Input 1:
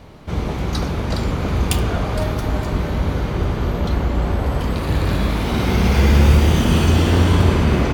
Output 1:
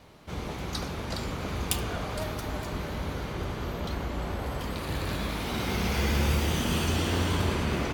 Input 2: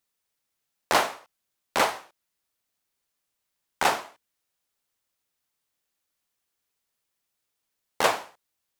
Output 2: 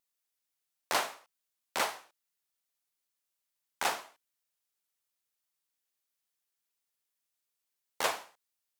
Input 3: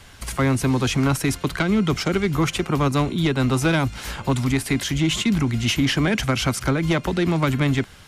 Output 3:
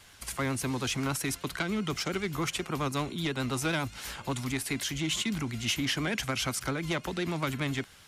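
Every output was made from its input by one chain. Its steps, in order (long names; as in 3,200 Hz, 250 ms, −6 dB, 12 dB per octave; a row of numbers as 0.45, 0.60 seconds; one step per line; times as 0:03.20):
spectral tilt +1.5 dB per octave
pitch vibrato 10 Hz 47 cents
level −9 dB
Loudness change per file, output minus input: −12.0, −8.0, −10.0 LU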